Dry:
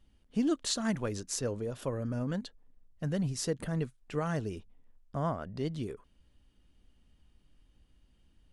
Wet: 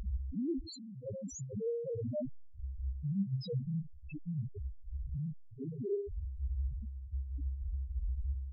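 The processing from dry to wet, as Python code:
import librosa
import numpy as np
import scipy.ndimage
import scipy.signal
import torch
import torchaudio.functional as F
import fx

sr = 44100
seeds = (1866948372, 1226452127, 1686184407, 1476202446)

p1 = np.sign(x) * np.sqrt(np.mean(np.square(x)))
p2 = scipy.signal.sosfilt(scipy.signal.butter(2, 42.0, 'highpass', fs=sr, output='sos'), p1)
p3 = fx.peak_eq(p2, sr, hz=750.0, db=-5.5, octaves=0.34)
p4 = fx.leveller(p3, sr, passes=1)
p5 = fx.over_compress(p4, sr, threshold_db=-40.0, ratio=-0.5)
p6 = p4 + F.gain(torch.from_numpy(p5), 2.0).numpy()
p7 = fx.leveller(p6, sr, passes=3)
p8 = fx.step_gate(p7, sr, bpm=158, pattern='xx.xxxxx...x.xx.', floor_db=-12.0, edge_ms=4.5)
p9 = fx.dmg_noise_band(p8, sr, seeds[0], low_hz=280.0, high_hz=700.0, level_db=-44.0)
p10 = p9 + fx.room_flutter(p9, sr, wall_m=10.6, rt60_s=0.41, dry=0)
p11 = np.sign(p10) * np.maximum(np.abs(p10) - 10.0 ** (-46.5 / 20.0), 0.0)
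p12 = fx.comb_fb(p11, sr, f0_hz=67.0, decay_s=1.1, harmonics='all', damping=0.0, mix_pct=80)
p13 = fx.spec_topn(p12, sr, count=1)
y = F.gain(torch.from_numpy(p13), 6.5).numpy()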